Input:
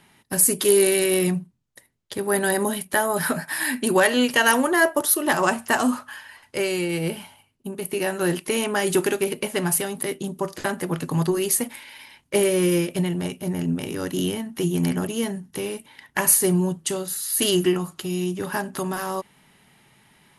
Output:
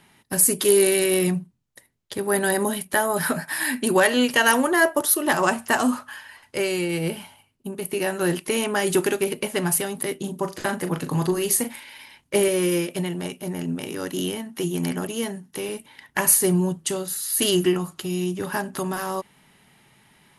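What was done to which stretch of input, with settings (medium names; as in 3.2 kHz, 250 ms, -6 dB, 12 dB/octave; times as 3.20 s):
10.16–11.80 s: doubling 39 ms -9 dB
12.48–15.69 s: high-pass 230 Hz 6 dB/octave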